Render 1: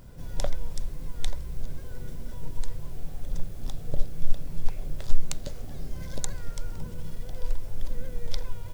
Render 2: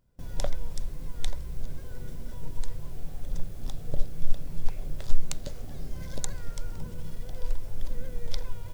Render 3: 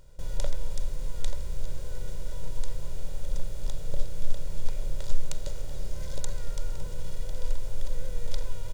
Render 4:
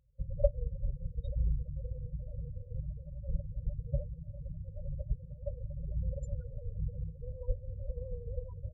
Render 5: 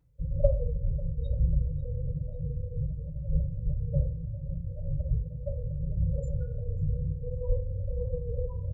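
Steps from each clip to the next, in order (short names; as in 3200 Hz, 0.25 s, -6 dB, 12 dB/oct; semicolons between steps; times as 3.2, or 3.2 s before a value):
gate with hold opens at -34 dBFS; gain -1 dB
per-bin compression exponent 0.6; comb 2.1 ms, depth 48%; gain -6.5 dB
loudest bins only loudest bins 8; HPF 42 Hz 24 dB/oct; upward expander 2.5:1, over -52 dBFS; gain +15 dB
feedback echo 0.544 s, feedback 46%, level -22 dB; FDN reverb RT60 0.45 s, low-frequency decay 1.1×, high-frequency decay 0.35×, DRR -6 dB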